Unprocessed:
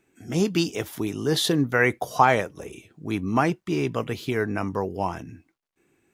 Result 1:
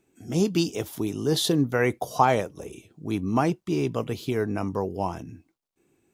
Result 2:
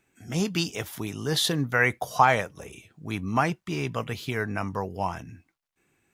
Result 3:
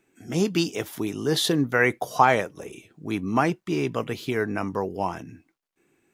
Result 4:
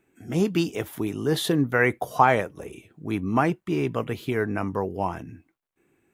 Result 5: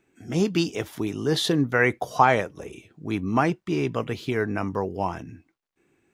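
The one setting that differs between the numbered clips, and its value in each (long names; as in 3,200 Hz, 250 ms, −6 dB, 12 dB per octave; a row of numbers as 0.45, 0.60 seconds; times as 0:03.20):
parametric band, centre frequency: 1,800, 340, 66, 5,300, 15,000 Hertz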